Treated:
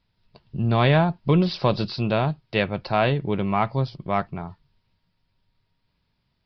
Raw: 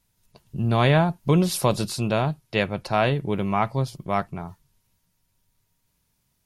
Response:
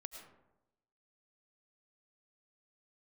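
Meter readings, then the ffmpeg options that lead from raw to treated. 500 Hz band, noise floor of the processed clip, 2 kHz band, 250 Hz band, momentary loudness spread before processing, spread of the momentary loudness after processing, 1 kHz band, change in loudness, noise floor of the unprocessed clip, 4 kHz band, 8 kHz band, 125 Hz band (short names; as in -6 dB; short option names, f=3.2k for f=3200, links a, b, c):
+0.5 dB, -73 dBFS, +0.5 dB, +0.5 dB, 9 LU, 9 LU, +0.5 dB, +0.5 dB, -72 dBFS, 0.0 dB, under -20 dB, +0.5 dB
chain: -af "aeval=exprs='0.447*(cos(1*acos(clip(val(0)/0.447,-1,1)))-cos(1*PI/2))+0.0112*(cos(5*acos(clip(val(0)/0.447,-1,1)))-cos(5*PI/2))':c=same,aresample=11025,aresample=44100"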